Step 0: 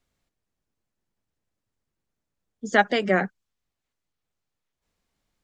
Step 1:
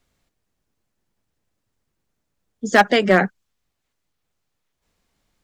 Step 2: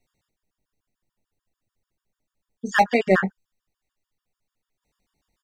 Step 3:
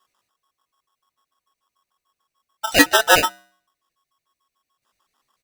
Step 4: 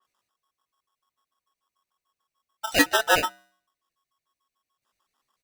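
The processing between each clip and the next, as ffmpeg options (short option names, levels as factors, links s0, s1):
-af "volume=4.22,asoftclip=hard,volume=0.237,volume=2.24"
-filter_complex "[0:a]asplit=2[s0][s1];[s1]adelay=21,volume=0.473[s2];[s0][s2]amix=inputs=2:normalize=0,afftfilt=real='re*gt(sin(2*PI*6.8*pts/sr)*(1-2*mod(floor(b*sr/1024/930),2)),0)':imag='im*gt(sin(2*PI*6.8*pts/sr)*(1-2*mod(floor(b*sr/1024/930),2)),0)':win_size=1024:overlap=0.75,volume=0.708"
-af "bandreject=f=130.1:t=h:w=4,bandreject=f=260.2:t=h:w=4,bandreject=f=390.3:t=h:w=4,bandreject=f=520.4:t=h:w=4,bandreject=f=650.5:t=h:w=4,bandreject=f=780.6:t=h:w=4,bandreject=f=910.7:t=h:w=4,aeval=exprs='val(0)*sgn(sin(2*PI*1100*n/s))':c=same,volume=1.58"
-af "adynamicequalizer=threshold=0.0355:dfrequency=3600:dqfactor=0.7:tfrequency=3600:tqfactor=0.7:attack=5:release=100:ratio=0.375:range=2.5:mode=cutabove:tftype=highshelf,volume=0.501"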